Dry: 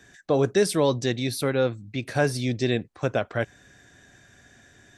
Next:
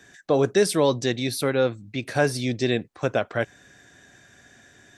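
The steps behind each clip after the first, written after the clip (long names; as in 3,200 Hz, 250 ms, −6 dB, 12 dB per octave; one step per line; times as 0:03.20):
low-shelf EQ 99 Hz −9 dB
level +2 dB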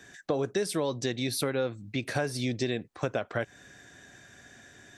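downward compressor 6 to 1, threshold −26 dBFS, peak gain reduction 11.5 dB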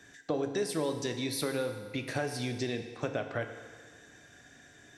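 feedback delay network reverb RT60 1.7 s, low-frequency decay 0.7×, high-frequency decay 0.85×, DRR 5.5 dB
level −4 dB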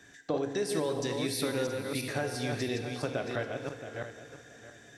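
feedback delay that plays each chunk backwards 336 ms, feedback 44%, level −4.5 dB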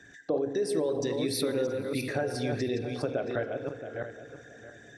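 spectral envelope exaggerated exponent 1.5
level +2.5 dB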